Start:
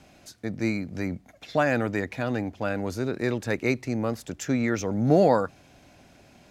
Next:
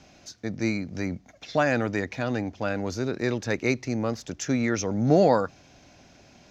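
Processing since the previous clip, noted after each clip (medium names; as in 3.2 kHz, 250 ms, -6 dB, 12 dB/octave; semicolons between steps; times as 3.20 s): resonant high shelf 7.5 kHz -8 dB, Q 3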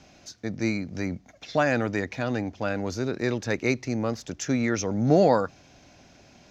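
no audible change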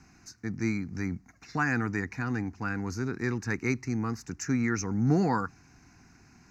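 static phaser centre 1.4 kHz, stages 4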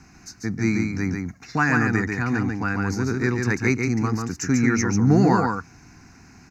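delay 142 ms -4 dB; trim +7 dB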